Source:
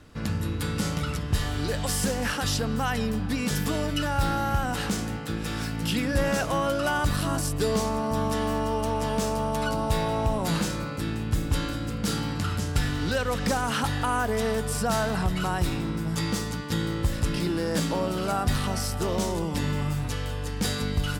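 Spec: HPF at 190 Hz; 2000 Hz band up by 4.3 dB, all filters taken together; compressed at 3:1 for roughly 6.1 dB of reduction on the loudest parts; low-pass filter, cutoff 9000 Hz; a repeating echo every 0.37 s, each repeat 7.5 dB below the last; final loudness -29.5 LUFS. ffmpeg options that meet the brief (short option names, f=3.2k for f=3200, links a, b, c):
-af "highpass=190,lowpass=9k,equalizer=f=2k:t=o:g=6,acompressor=threshold=-29dB:ratio=3,aecho=1:1:370|740|1110|1480|1850:0.422|0.177|0.0744|0.0312|0.0131,volume=1.5dB"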